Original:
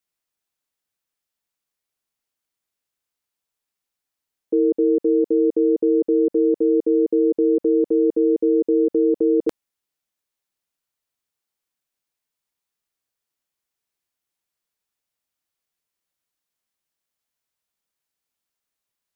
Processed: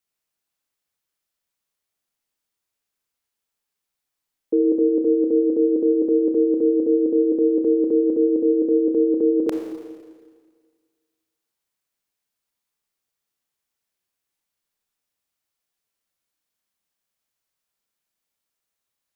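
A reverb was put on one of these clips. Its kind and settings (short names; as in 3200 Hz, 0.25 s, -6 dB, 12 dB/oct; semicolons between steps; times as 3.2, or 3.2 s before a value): Schroeder reverb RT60 1.7 s, combs from 28 ms, DRR 3.5 dB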